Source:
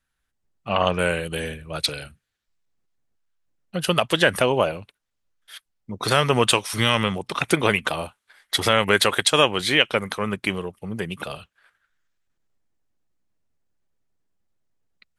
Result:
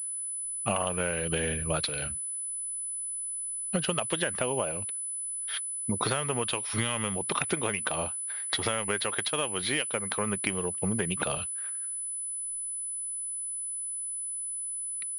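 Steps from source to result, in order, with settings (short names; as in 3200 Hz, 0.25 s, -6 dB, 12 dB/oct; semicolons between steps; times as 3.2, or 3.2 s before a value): compressor 16:1, threshold -32 dBFS, peak gain reduction 21.5 dB; pulse-width modulation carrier 10000 Hz; gain +6.5 dB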